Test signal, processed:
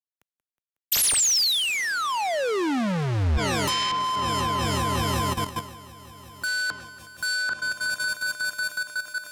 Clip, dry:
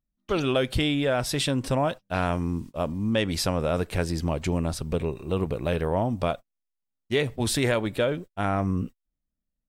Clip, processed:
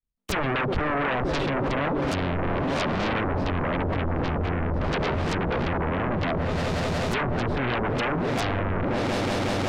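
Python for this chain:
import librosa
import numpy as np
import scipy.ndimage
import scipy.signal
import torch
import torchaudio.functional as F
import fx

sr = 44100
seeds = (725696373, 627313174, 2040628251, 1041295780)

p1 = fx.halfwave_hold(x, sr)
p2 = p1 + fx.echo_swell(p1, sr, ms=183, loudest=5, wet_db=-17.5, dry=0)
p3 = fx.env_lowpass_down(p2, sr, base_hz=470.0, full_db=-17.0)
p4 = fx.fold_sine(p3, sr, drive_db=18, ceiling_db=-10.0)
p5 = p3 + (p4 * 10.0 ** (-4.5 / 20.0))
p6 = fx.level_steps(p5, sr, step_db=12)
p7 = fx.band_widen(p6, sr, depth_pct=70)
y = p7 * 10.0 ** (-1.0 / 20.0)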